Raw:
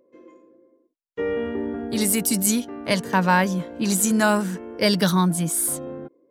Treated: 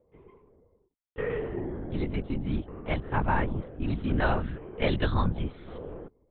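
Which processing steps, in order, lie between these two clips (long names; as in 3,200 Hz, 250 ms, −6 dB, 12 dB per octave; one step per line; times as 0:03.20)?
0:01.40–0:03.91: low-pass filter 1,600 Hz 6 dB per octave
linear-prediction vocoder at 8 kHz whisper
level −6 dB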